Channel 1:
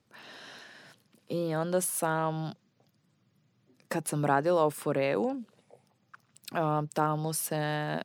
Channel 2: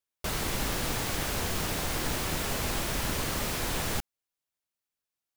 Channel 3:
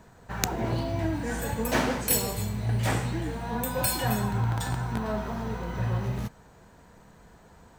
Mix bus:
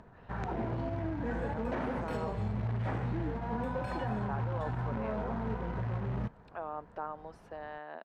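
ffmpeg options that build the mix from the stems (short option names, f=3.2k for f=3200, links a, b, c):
-filter_complex "[0:a]highpass=530,volume=-8dB[a];[2:a]acrusher=bits=2:mode=log:mix=0:aa=0.000001,volume=-3dB[b];[a][b]amix=inputs=2:normalize=0,lowpass=1.5k,acompressor=mode=upward:threshold=-53dB:ratio=2.5,alimiter=level_in=2dB:limit=-24dB:level=0:latency=1:release=50,volume=-2dB"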